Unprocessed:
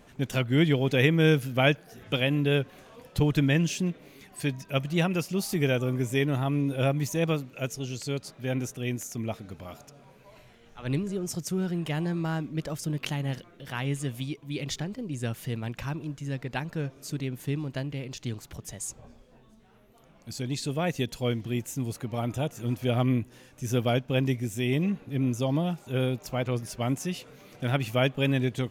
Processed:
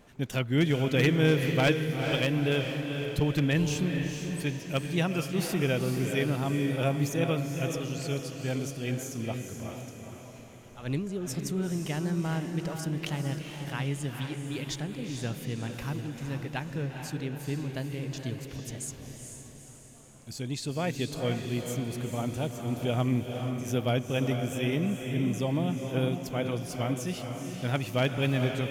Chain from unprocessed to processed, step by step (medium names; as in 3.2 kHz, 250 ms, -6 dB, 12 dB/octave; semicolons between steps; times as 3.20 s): one-sided wavefolder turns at -16 dBFS; echo that smears into a reverb 455 ms, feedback 51%, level -5.5 dB; trim -2.5 dB